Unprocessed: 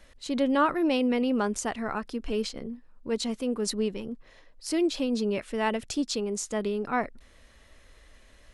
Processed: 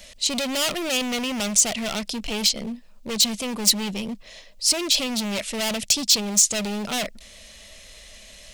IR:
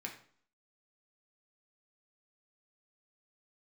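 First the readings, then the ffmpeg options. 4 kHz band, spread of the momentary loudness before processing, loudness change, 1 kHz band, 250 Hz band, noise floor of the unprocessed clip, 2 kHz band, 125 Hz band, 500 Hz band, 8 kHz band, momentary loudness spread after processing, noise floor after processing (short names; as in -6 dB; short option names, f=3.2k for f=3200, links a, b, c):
+15.5 dB, 14 LU, +7.0 dB, -2.0 dB, -0.5 dB, -56 dBFS, +5.0 dB, +4.5 dB, -2.0 dB, +17.5 dB, 12 LU, -47 dBFS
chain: -af "equalizer=f=200:t=o:w=0.33:g=9,equalizer=f=315:t=o:w=0.33:g=-7,equalizer=f=630:t=o:w=0.33:g=10,equalizer=f=10k:t=o:w=0.33:g=-7,volume=30.5dB,asoftclip=hard,volume=-30.5dB,aexciter=amount=4.8:drive=4.9:freq=2.2k,volume=4dB"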